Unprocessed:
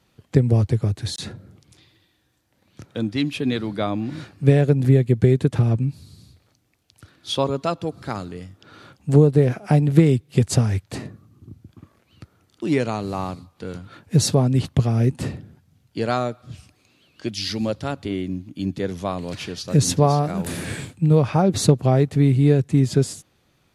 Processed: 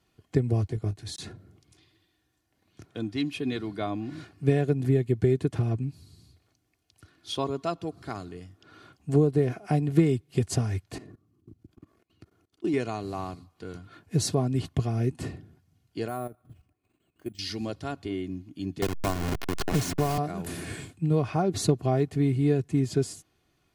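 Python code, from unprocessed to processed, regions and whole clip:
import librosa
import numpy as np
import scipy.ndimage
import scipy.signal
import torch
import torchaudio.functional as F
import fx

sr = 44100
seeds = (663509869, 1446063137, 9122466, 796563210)

y = fx.chain(x, sr, fx.highpass(hz=61.0, slope=12),
    fx.level_steps(step_db=10),
    fx.doubler(ms=19.0, db=-10.0), at=(0.68, 1.09))
y = fx.chain(y, sr, fx.peak_eq(hz=340.0, db=5.0, octaves=1.6),
    fx.level_steps(step_db=20), at=(10.98, 12.74))
y = fx.chain(y, sr, fx.level_steps(step_db=12),
    fx.spacing_loss(db_at_10k=34),
    fx.resample_bad(factor=4, down='none', up='hold'), at=(16.08, 17.39))
y = fx.chain(y, sr, fx.delta_hold(step_db=-20.0),
    fx.band_squash(depth_pct=100), at=(18.82, 20.18))
y = fx.peak_eq(y, sr, hz=170.0, db=6.0, octaves=0.37)
y = fx.notch(y, sr, hz=3700.0, q=21.0)
y = y + 0.51 * np.pad(y, (int(2.8 * sr / 1000.0), 0))[:len(y)]
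y = y * librosa.db_to_amplitude(-8.0)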